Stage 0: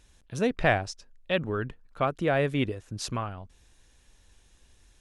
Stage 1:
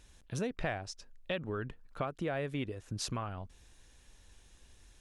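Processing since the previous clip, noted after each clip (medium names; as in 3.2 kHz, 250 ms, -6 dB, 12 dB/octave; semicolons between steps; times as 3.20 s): compression 4:1, threshold -34 dBFS, peak gain reduction 14 dB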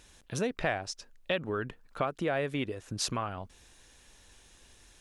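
bass shelf 160 Hz -9 dB; trim +6 dB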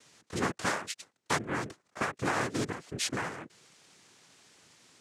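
noise-vocoded speech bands 3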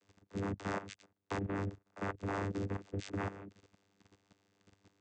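vocoder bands 16, saw 98.9 Hz; level held to a coarse grid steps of 13 dB; trim +3 dB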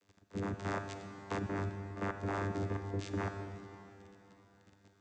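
reverberation RT60 3.6 s, pre-delay 33 ms, DRR 6.5 dB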